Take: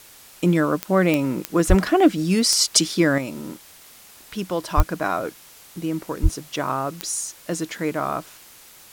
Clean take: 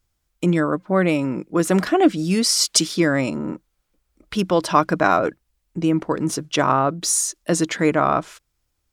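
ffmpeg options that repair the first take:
ffmpeg -i in.wav -filter_complex "[0:a]adeclick=threshold=4,asplit=3[link_01][link_02][link_03];[link_01]afade=type=out:start_time=1.68:duration=0.02[link_04];[link_02]highpass=frequency=140:width=0.5412,highpass=frequency=140:width=1.3066,afade=type=in:start_time=1.68:duration=0.02,afade=type=out:start_time=1.8:duration=0.02[link_05];[link_03]afade=type=in:start_time=1.8:duration=0.02[link_06];[link_04][link_05][link_06]amix=inputs=3:normalize=0,asplit=3[link_07][link_08][link_09];[link_07]afade=type=out:start_time=4.76:duration=0.02[link_10];[link_08]highpass=frequency=140:width=0.5412,highpass=frequency=140:width=1.3066,afade=type=in:start_time=4.76:duration=0.02,afade=type=out:start_time=4.88:duration=0.02[link_11];[link_09]afade=type=in:start_time=4.88:duration=0.02[link_12];[link_10][link_11][link_12]amix=inputs=3:normalize=0,asplit=3[link_13][link_14][link_15];[link_13]afade=type=out:start_time=6.22:duration=0.02[link_16];[link_14]highpass=frequency=140:width=0.5412,highpass=frequency=140:width=1.3066,afade=type=in:start_time=6.22:duration=0.02,afade=type=out:start_time=6.34:duration=0.02[link_17];[link_15]afade=type=in:start_time=6.34:duration=0.02[link_18];[link_16][link_17][link_18]amix=inputs=3:normalize=0,afwtdn=0.005,asetnsamples=nb_out_samples=441:pad=0,asendcmd='3.18 volume volume 7dB',volume=0dB" out.wav

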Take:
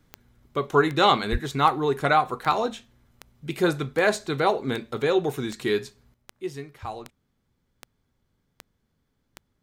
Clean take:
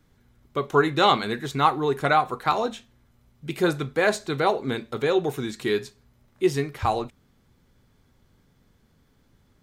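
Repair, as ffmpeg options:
ffmpeg -i in.wav -filter_complex "[0:a]adeclick=threshold=4,asplit=3[link_01][link_02][link_03];[link_01]afade=type=out:start_time=1.31:duration=0.02[link_04];[link_02]highpass=frequency=140:width=0.5412,highpass=frequency=140:width=1.3066,afade=type=in:start_time=1.31:duration=0.02,afade=type=out:start_time=1.43:duration=0.02[link_05];[link_03]afade=type=in:start_time=1.43:duration=0.02[link_06];[link_04][link_05][link_06]amix=inputs=3:normalize=0,asetnsamples=nb_out_samples=441:pad=0,asendcmd='6.14 volume volume 11dB',volume=0dB" out.wav

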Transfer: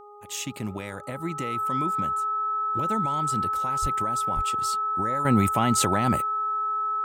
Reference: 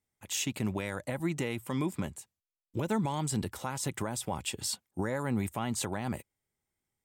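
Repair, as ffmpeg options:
ffmpeg -i in.wav -filter_complex "[0:a]bandreject=frequency=413.5:width_type=h:width=4,bandreject=frequency=827:width_type=h:width=4,bandreject=frequency=1240.5:width_type=h:width=4,bandreject=frequency=1300:width=30,asplit=3[link_01][link_02][link_03];[link_01]afade=type=out:start_time=3.81:duration=0.02[link_04];[link_02]highpass=frequency=140:width=0.5412,highpass=frequency=140:width=1.3066,afade=type=in:start_time=3.81:duration=0.02,afade=type=out:start_time=3.93:duration=0.02[link_05];[link_03]afade=type=in:start_time=3.93:duration=0.02[link_06];[link_04][link_05][link_06]amix=inputs=3:normalize=0,asplit=3[link_07][link_08][link_09];[link_07]afade=type=out:start_time=4.35:duration=0.02[link_10];[link_08]highpass=frequency=140:width=0.5412,highpass=frequency=140:width=1.3066,afade=type=in:start_time=4.35:duration=0.02,afade=type=out:start_time=4.47:duration=0.02[link_11];[link_09]afade=type=in:start_time=4.47:duration=0.02[link_12];[link_10][link_11][link_12]amix=inputs=3:normalize=0,asetnsamples=nb_out_samples=441:pad=0,asendcmd='5.25 volume volume -10dB',volume=0dB" out.wav

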